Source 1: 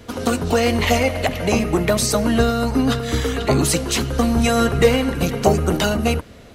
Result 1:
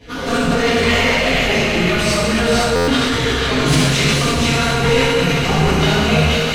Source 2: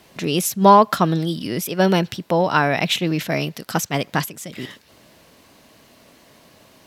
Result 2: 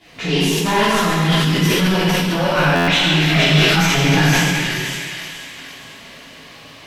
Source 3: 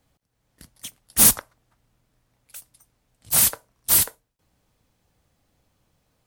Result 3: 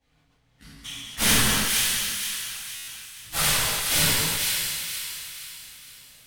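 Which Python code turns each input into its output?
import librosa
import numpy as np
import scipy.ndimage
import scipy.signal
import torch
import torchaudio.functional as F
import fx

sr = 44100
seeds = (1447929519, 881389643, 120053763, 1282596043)

p1 = fx.diode_clip(x, sr, knee_db=-18.5)
p2 = fx.high_shelf(p1, sr, hz=5100.0, db=-11.0)
p3 = fx.chorus_voices(p2, sr, voices=6, hz=1.0, base_ms=15, depth_ms=4.2, mix_pct=65)
p4 = fx.rider(p3, sr, range_db=10, speed_s=0.5)
p5 = p4 + fx.echo_wet_highpass(p4, sr, ms=468, feedback_pct=44, hz=2000.0, wet_db=-3, dry=0)
p6 = fx.filter_lfo_notch(p5, sr, shape='saw_down', hz=4.1, low_hz=240.0, high_hz=1500.0, q=2.4)
p7 = fx.peak_eq(p6, sr, hz=2900.0, db=7.0, octaves=2.4)
p8 = fx.rev_plate(p7, sr, seeds[0], rt60_s=2.0, hf_ratio=0.95, predelay_ms=0, drr_db=-8.0)
p9 = fx.buffer_glitch(p8, sr, at_s=(2.75,), block=512, repeats=10)
p10 = fx.sustainer(p9, sr, db_per_s=21.0)
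y = p10 * 10.0 ** (-1.5 / 20.0)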